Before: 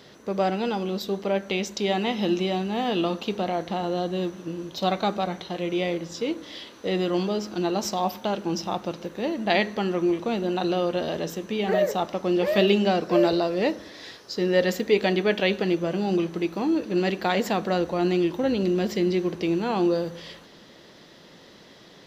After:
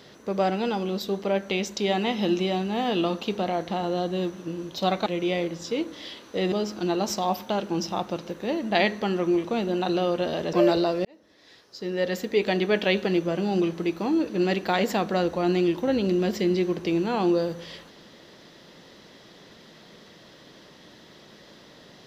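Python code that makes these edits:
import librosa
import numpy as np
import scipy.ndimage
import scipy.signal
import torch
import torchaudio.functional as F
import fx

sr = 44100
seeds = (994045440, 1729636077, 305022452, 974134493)

y = fx.edit(x, sr, fx.cut(start_s=5.06, length_s=0.5),
    fx.cut(start_s=7.02, length_s=0.25),
    fx.cut(start_s=11.28, length_s=1.81),
    fx.fade_in_span(start_s=13.61, length_s=1.76), tone=tone)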